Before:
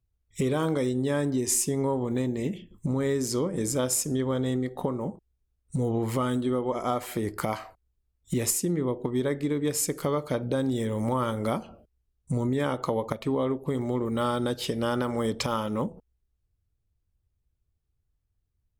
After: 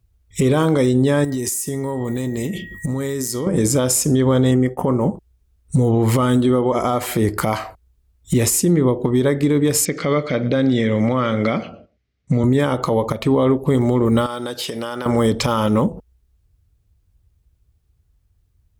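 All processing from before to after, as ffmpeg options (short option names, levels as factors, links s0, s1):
-filter_complex "[0:a]asettb=1/sr,asplit=3[s0][s1][s2];[s0]atrim=end=1.244[s3];[s1]atrim=start=1.24:end=3.47,asetpts=PTS-STARTPTS,afade=t=in:d=0.004:c=qsin,afade=t=out:st=2.226:d=0.004:c=qsin,aemphasis=mode=production:type=50fm,aeval=exprs='val(0)+0.00398*sin(2*PI*1900*n/s)':c=same,acompressor=threshold=0.0251:ratio=20:attack=3.2:release=140:knee=1:detection=peak[s4];[s2]atrim=start=3.466[s5];[s3][s4]acrossfade=d=0.004:c1=hsin:c2=qsin[s6];[s6][s5]acrossfade=d=0.004:c1=qsin:c2=hsin,asettb=1/sr,asplit=3[s7][s8][s9];[s7]atrim=end=4.514[s10];[s8]atrim=start=4.51:end=5.1,asetpts=PTS-STARTPTS,afade=t=in:d=0.004:c=qsin,afade=t=out:st=0.586:d=0.004:c=qsin,agate=range=0.0224:threshold=0.0141:ratio=3:release=100:detection=peak,asuperstop=centerf=4000:order=8:qfactor=2.5[s11];[s9]atrim=start=5.096[s12];[s10][s11]acrossfade=d=0.004:c1=hsin:c2=qsin[s13];[s13][s12]acrossfade=d=0.004:c1=qsin:c2=hsin,asettb=1/sr,asplit=3[s14][s15][s16];[s14]atrim=end=9.854[s17];[s15]atrim=start=9.85:end=12.44,asetpts=PTS-STARTPTS,afade=t=in:d=0.004:c=qsin,afade=t=out:st=2.586:d=0.004:c=qsin,highpass=140,equalizer=f=380:t=q:w=4:g=-4,equalizer=f=920:t=q:w=4:g=-10,equalizer=f=2100:t=q:w=4:g=9,lowpass=f=5400:w=0.5412,lowpass=f=5400:w=1.3066,aecho=1:1:118:0.0841,atrim=end_sample=114219[s18];[s16]atrim=start=12.436[s19];[s17][s18]acrossfade=d=0.004:c1=hsin:c2=qsin[s20];[s20][s19]acrossfade=d=0.004:c1=qsin:c2=hsin,asettb=1/sr,asplit=3[s21][s22][s23];[s21]atrim=end=14.264[s24];[s22]atrim=start=14.26:end=15.06,asetpts=PTS-STARTPTS,afade=t=in:d=0.004:c=qsin,afade=t=out:st=0.796:d=0.004:c=qsin,highpass=f=610:p=1,acompressor=threshold=0.0178:ratio=5:attack=3.2:release=140:knee=1:detection=peak[s25];[s23]atrim=start=15.056[s26];[s24][s25]acrossfade=d=0.004:c1=hsin:c2=qsin[s27];[s27][s26]acrossfade=d=0.004:c1=qsin:c2=hsin,highpass=46,lowshelf=f=71:g=10.5,alimiter=level_in=9.44:limit=0.891:release=50:level=0:latency=1,volume=0.447"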